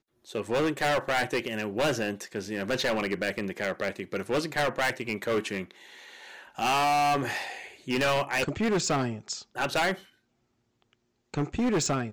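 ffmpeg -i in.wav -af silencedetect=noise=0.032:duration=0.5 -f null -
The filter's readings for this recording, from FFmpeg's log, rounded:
silence_start: 5.63
silence_end: 6.59 | silence_duration: 0.96
silence_start: 9.94
silence_end: 11.34 | silence_duration: 1.40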